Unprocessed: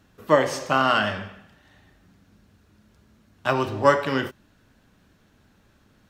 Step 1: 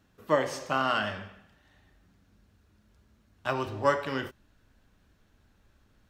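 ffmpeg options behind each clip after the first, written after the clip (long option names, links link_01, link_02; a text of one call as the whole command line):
ffmpeg -i in.wav -af "asubboost=boost=3:cutoff=82,volume=-7dB" out.wav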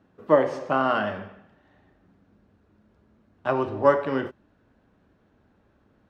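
ffmpeg -i in.wav -af "bandpass=frequency=410:width_type=q:width=0.54:csg=0,volume=8dB" out.wav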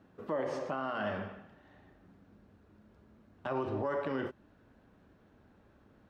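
ffmpeg -i in.wav -af "acompressor=threshold=-34dB:ratio=1.5,alimiter=level_in=1.5dB:limit=-24dB:level=0:latency=1:release=45,volume=-1.5dB" out.wav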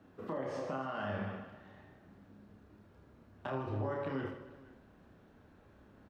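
ffmpeg -i in.wav -filter_complex "[0:a]acrossover=split=180[link_01][link_02];[link_02]acompressor=threshold=-38dB:ratio=6[link_03];[link_01][link_03]amix=inputs=2:normalize=0,asplit=2[link_04][link_05];[link_05]aecho=0:1:30|78|154.8|277.7|474.3:0.631|0.398|0.251|0.158|0.1[link_06];[link_04][link_06]amix=inputs=2:normalize=0" out.wav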